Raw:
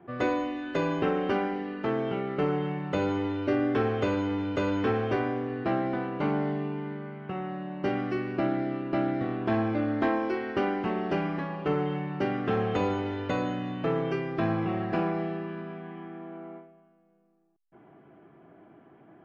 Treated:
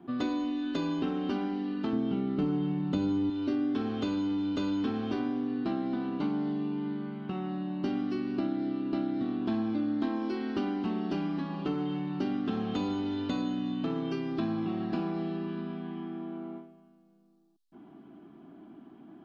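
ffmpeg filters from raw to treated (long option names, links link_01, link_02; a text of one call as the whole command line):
ffmpeg -i in.wav -filter_complex "[0:a]asettb=1/sr,asplit=3[link_01][link_02][link_03];[link_01]atrim=end=1.934[link_04];[link_02]atrim=start=1.93:end=3.3,asetpts=PTS-STARTPTS,afade=type=in:duration=0.004:curve=qsin,afade=type=out:start_time=1.366:duration=0.004:curve=qsin,lowshelf=frequency=330:gain=10.5[link_05];[link_03]atrim=start=3.296[link_06];[link_04][link_05]acrossfade=duration=0.004:curve1=hsin:curve2=qsin[link_07];[link_07][link_06]acrossfade=duration=0.004:curve1=qsin:curve2=hsin,equalizer=frequency=125:width_type=o:width=1:gain=-9,equalizer=frequency=250:width_type=o:width=1:gain=12,equalizer=frequency=500:width_type=o:width=1:gain=-11,equalizer=frequency=2000:width_type=o:width=1:gain=-10,equalizer=frequency=4000:width_type=o:width=1:gain=10,acompressor=threshold=-33dB:ratio=2.5,volume=2dB" out.wav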